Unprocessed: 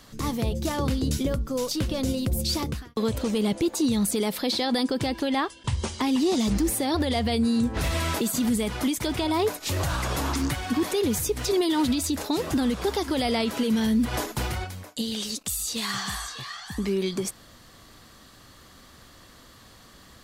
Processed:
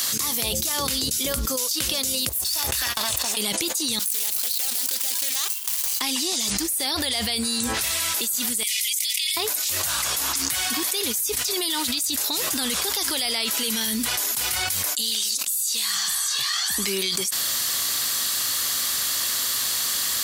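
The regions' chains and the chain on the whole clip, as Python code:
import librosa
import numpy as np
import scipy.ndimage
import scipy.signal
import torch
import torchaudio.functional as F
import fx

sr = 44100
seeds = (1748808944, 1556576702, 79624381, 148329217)

y = fx.chain(x, sr, fx.lower_of_two(delay_ms=1.1),
    fx.peak_eq(hz=190.0, db=-11.0, octaves=0.87),
    fx.over_compress(threshold_db=-39.0, ratio=-1.0), at=(2.29, 3.37))
y = fx.chain(y, sr, fx.median_filter(points=25),
    fx.differentiator(),
    fx.doppler_dist(depth_ms=0.24), at=(3.99, 6.01))
y = fx.chain(y, sr, fx.cheby1_highpass(hz=2000.0, order=6),
    fx.over_compress(threshold_db=-40.0, ratio=-0.5), at=(8.63, 9.37))
y = scipy.signal.sosfilt(scipy.signal.butter(2, 54.0, 'highpass', fs=sr, output='sos'), y)
y = F.preemphasis(torch.from_numpy(y), 0.97).numpy()
y = fx.env_flatten(y, sr, amount_pct=100)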